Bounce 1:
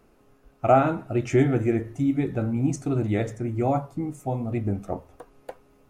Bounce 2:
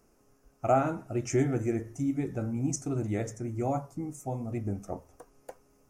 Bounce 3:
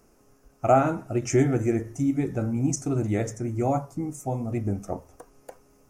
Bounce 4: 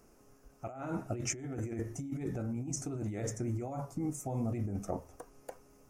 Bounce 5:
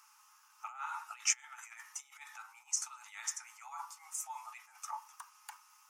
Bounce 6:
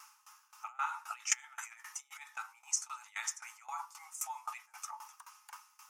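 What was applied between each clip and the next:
resonant high shelf 4.7 kHz +6.5 dB, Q 3; trim -6.5 dB
endings held to a fixed fall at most 350 dB/s; trim +5.5 dB
compressor with a negative ratio -30 dBFS, ratio -1; trim -7 dB
rippled Chebyshev high-pass 850 Hz, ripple 6 dB; trim +10 dB
sawtooth tremolo in dB decaying 3.8 Hz, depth 20 dB; trim +10 dB

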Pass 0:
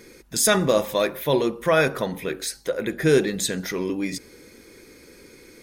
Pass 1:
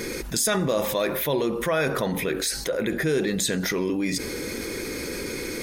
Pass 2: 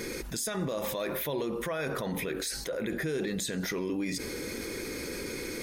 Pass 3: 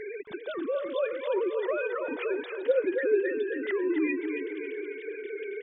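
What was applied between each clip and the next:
level flattener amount 70%; trim -7.5 dB
peak limiter -18 dBFS, peak gain reduction 7.5 dB; trim -5.5 dB
formants replaced by sine waves; feedback delay 272 ms, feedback 49%, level -6.5 dB; trim +2.5 dB

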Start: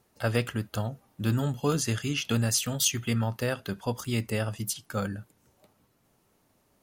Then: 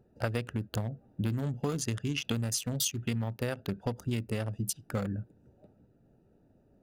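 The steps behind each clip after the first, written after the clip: local Wiener filter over 41 samples; compression 6:1, threshold -36 dBFS, peak gain reduction 14.5 dB; trim +7 dB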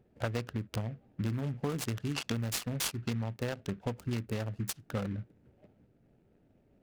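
delay time shaken by noise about 1.6 kHz, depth 0.046 ms; trim -2 dB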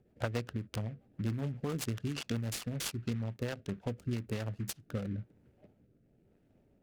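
rotary cabinet horn 7.5 Hz, later 1 Hz, at 3.08 s

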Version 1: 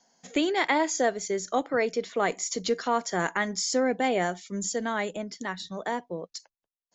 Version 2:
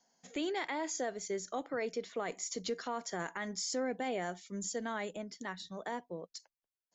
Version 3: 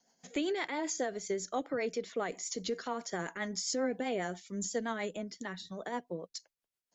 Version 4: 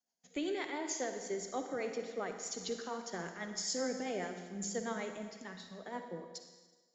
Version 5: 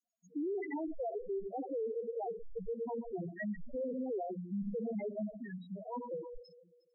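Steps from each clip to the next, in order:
peak limiter -19 dBFS, peak gain reduction 7.5 dB; trim -8 dB
rotary cabinet horn 7.5 Hz; trim +4.5 dB
on a send at -5 dB: reverberation RT60 1.9 s, pre-delay 48 ms; on the sum: three bands expanded up and down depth 40%; trim -4.5 dB
tracing distortion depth 0.23 ms; loudest bins only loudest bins 2; peak limiter -42 dBFS, peak gain reduction 9.5 dB; trim +10 dB

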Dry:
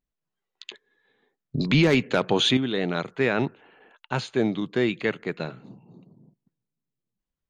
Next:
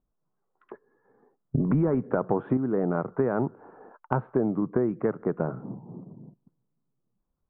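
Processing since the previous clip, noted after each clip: steep low-pass 1.3 kHz 36 dB/octave; compression 5:1, threshold -30 dBFS, peak gain reduction 13 dB; trim +8 dB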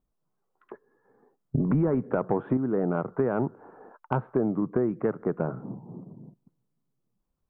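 saturation -10 dBFS, distortion -28 dB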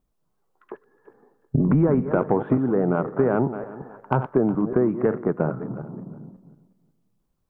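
backward echo that repeats 182 ms, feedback 42%, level -10.5 dB; trim +5 dB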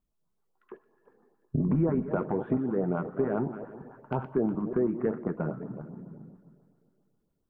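two-slope reverb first 0.22 s, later 3 s, from -18 dB, DRR 9.5 dB; LFO notch saw up 7.4 Hz 350–2500 Hz; trim -7 dB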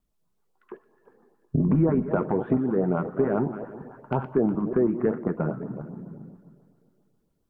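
vibrato 5.3 Hz 38 cents; trim +4.5 dB

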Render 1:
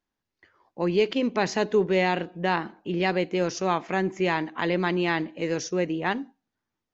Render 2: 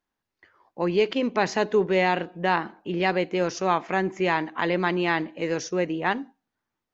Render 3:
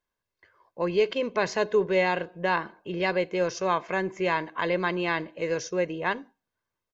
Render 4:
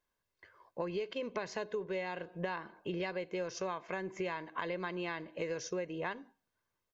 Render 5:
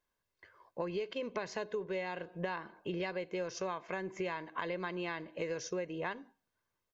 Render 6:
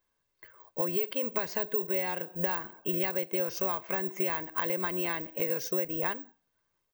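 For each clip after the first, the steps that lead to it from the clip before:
peaking EQ 1.1 kHz +4.5 dB 2.6 oct; trim -1.5 dB
comb 1.9 ms, depth 51%; trim -3 dB
compression 12:1, threshold -34 dBFS, peak gain reduction 16.5 dB
no audible change
careless resampling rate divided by 2×, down filtered, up zero stuff; trim +4 dB

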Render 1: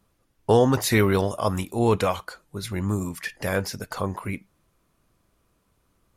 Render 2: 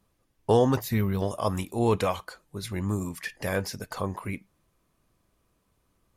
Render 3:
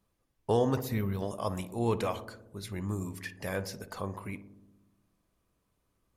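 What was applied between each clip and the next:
band-stop 1.4 kHz, Q 15; time-frequency box 0.79–1.21 s, 250–12000 Hz -10 dB; trim -3 dB
filtered feedback delay 60 ms, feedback 77%, low-pass 1 kHz, level -12 dB; trim -6 dB

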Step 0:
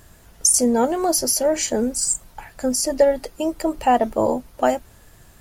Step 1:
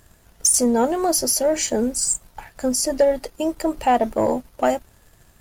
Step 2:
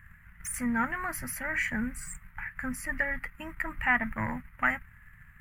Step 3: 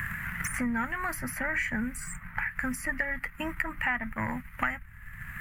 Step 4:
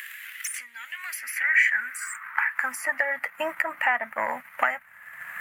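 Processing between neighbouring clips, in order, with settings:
waveshaping leveller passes 1; trim -3.5 dB
FFT filter 180 Hz 0 dB, 400 Hz -28 dB, 640 Hz -23 dB, 1.2 kHz 0 dB, 2 kHz +11 dB, 3.7 kHz -23 dB, 5.4 kHz -29 dB, 13 kHz -12 dB
three bands compressed up and down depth 100%
high-pass sweep 3.4 kHz -> 600 Hz, 0.79–3.18 s; trim +4 dB

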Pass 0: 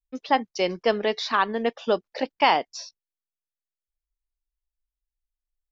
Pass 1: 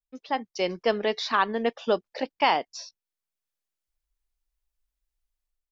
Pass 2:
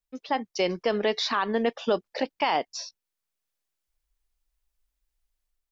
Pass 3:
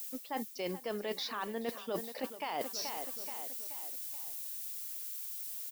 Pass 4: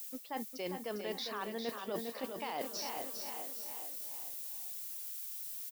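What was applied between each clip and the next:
level rider gain up to 13 dB; trim -8 dB
peak limiter -18 dBFS, peak gain reduction 9 dB; trim +3.5 dB
feedback delay 429 ms, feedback 48%, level -17 dB; added noise violet -42 dBFS; reverse; compression 10:1, threshold -34 dBFS, peak gain reduction 15 dB; reverse
feedback delay 403 ms, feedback 37%, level -6.5 dB; trim -2.5 dB

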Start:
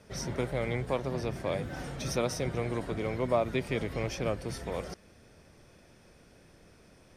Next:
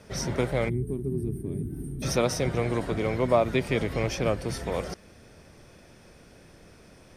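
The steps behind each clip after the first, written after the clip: time-frequency box 0.69–2.03 s, 450–8400 Hz -29 dB; trim +5.5 dB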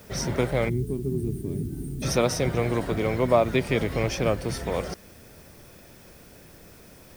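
added noise blue -58 dBFS; trim +2 dB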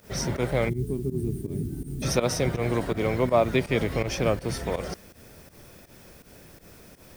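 volume shaper 82 bpm, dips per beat 2, -15 dB, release 102 ms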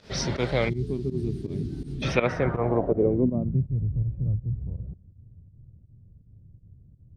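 low-pass sweep 4.3 kHz -> 110 Hz, 1.91–3.70 s

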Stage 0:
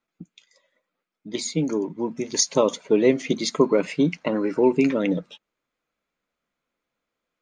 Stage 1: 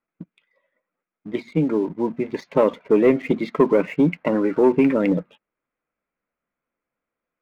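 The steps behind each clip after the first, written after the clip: low-pass 2.4 kHz 24 dB/octave; waveshaping leveller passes 1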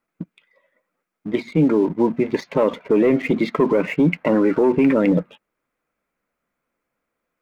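peak limiter -15.5 dBFS, peak gain reduction 9 dB; trim +6.5 dB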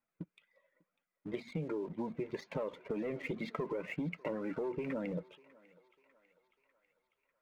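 flange 2 Hz, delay 1.1 ms, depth 1.2 ms, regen -36%; compression, threshold -28 dBFS, peak gain reduction 11.5 dB; thinning echo 597 ms, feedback 62%, high-pass 590 Hz, level -20.5 dB; trim -7 dB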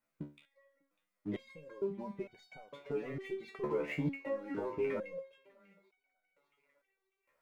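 resonator arpeggio 2.2 Hz 73–750 Hz; trim +11.5 dB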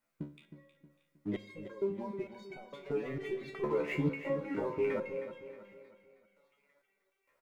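feedback delay 315 ms, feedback 42%, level -11.5 dB; on a send at -16.5 dB: reverberation RT60 1.4 s, pre-delay 36 ms; on the sum: trim +2.5 dB

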